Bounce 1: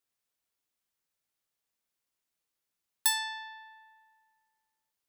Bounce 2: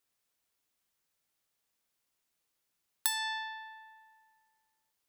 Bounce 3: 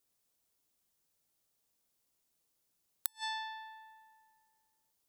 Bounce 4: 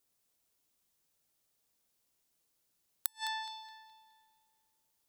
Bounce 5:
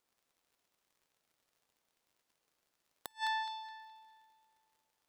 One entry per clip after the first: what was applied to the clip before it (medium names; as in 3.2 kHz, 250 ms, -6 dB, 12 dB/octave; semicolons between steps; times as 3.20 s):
compression 6:1, threshold -32 dBFS, peak gain reduction 10.5 dB; trim +4 dB
peaking EQ 1.9 kHz -8 dB 2.2 oct; inverted gate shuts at -28 dBFS, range -36 dB; trim +3.5 dB
band-passed feedback delay 210 ms, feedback 42%, band-pass 2.8 kHz, level -5.5 dB; trim +1 dB
overdrive pedal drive 14 dB, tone 1.4 kHz, clips at -10 dBFS; crackle 84 per s -60 dBFS; trim -1.5 dB